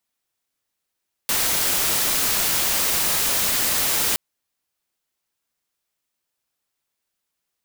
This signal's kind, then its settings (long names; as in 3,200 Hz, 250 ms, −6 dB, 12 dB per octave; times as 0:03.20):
noise white, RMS −21 dBFS 2.87 s